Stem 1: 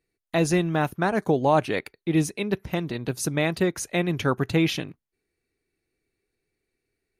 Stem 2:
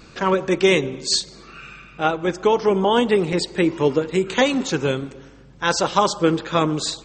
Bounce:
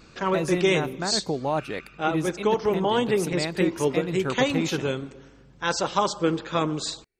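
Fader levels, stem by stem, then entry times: -6.0 dB, -5.5 dB; 0.00 s, 0.00 s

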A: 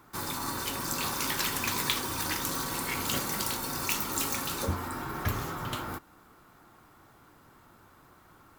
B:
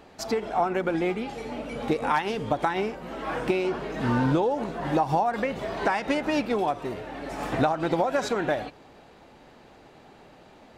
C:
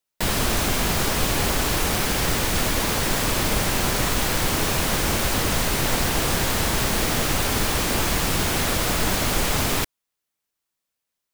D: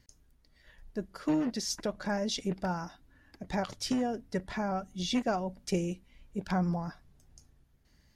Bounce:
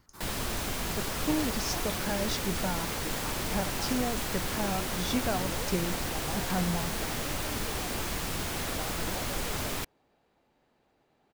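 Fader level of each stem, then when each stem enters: -14.0 dB, -19.0 dB, -11.0 dB, -1.0 dB; 0.00 s, 1.15 s, 0.00 s, 0.00 s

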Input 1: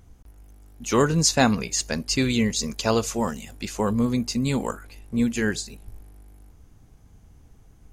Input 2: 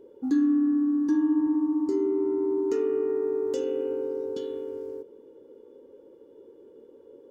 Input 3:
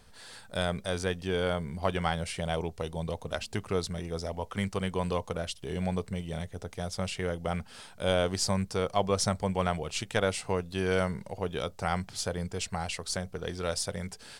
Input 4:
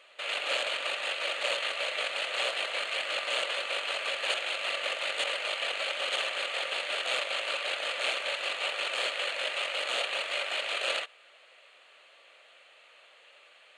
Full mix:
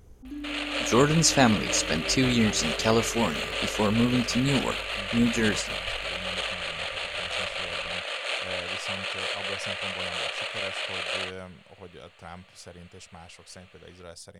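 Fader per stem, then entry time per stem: -1.0 dB, -15.5 dB, -12.5 dB, 0.0 dB; 0.00 s, 0.00 s, 0.40 s, 0.25 s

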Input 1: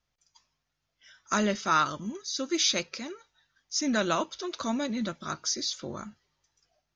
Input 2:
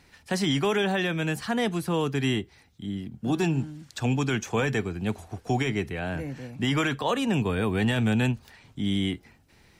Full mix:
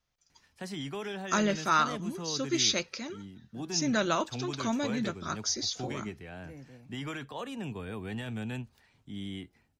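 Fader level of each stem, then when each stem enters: -1.0 dB, -13.0 dB; 0.00 s, 0.30 s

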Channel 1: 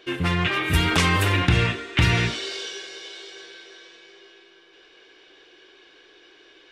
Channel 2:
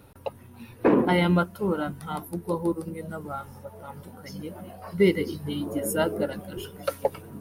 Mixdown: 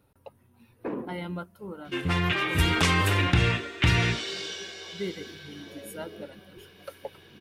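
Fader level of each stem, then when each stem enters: -3.0 dB, -13.5 dB; 1.85 s, 0.00 s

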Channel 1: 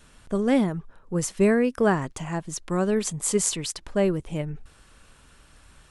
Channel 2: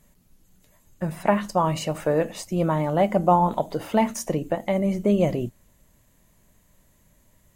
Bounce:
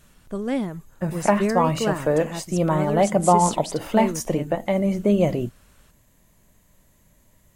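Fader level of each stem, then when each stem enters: -4.0 dB, +1.5 dB; 0.00 s, 0.00 s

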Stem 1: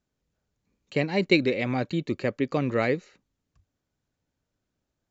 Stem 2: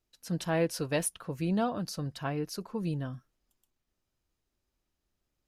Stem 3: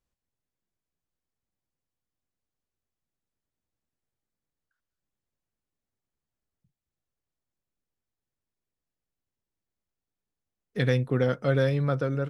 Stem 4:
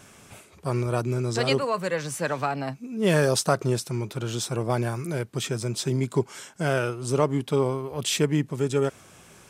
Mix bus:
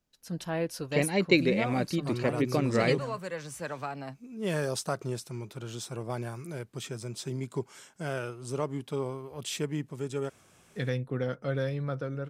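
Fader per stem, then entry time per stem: -2.0 dB, -3.0 dB, -7.0 dB, -9.5 dB; 0.00 s, 0.00 s, 0.00 s, 1.40 s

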